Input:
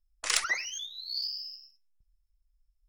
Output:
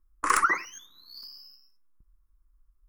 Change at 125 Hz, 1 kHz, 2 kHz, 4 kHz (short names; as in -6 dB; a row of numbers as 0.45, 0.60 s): n/a, +15.0 dB, +4.0 dB, -11.0 dB